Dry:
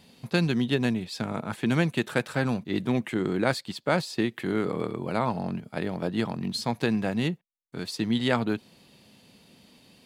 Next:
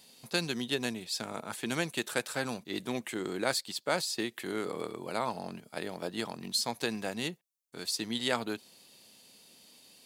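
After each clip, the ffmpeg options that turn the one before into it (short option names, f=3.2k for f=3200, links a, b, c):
-af "bass=f=250:g=-11,treble=f=4k:g=12,volume=-5dB"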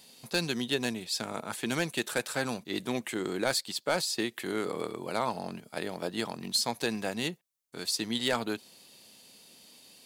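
-af "volume=20.5dB,asoftclip=hard,volume=-20.5dB,volume=2.5dB"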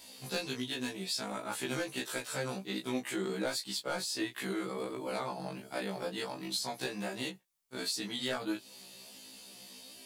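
-af "acompressor=threshold=-37dB:ratio=4,flanger=delay=18.5:depth=2.7:speed=1.4,afftfilt=real='re*1.73*eq(mod(b,3),0)':imag='im*1.73*eq(mod(b,3),0)':win_size=2048:overlap=0.75,volume=9dB"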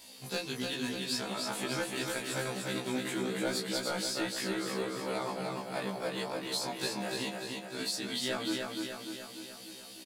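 -af "aecho=1:1:297|594|891|1188|1485|1782|2079|2376:0.668|0.394|0.233|0.137|0.081|0.0478|0.0282|0.0166"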